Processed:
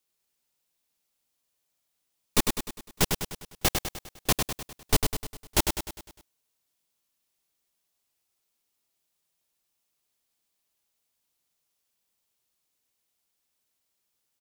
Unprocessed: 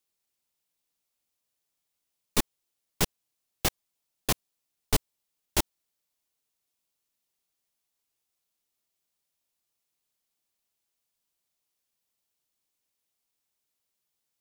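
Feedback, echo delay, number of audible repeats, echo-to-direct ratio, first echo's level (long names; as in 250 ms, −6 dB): 51%, 101 ms, 6, −3.5 dB, −5.0 dB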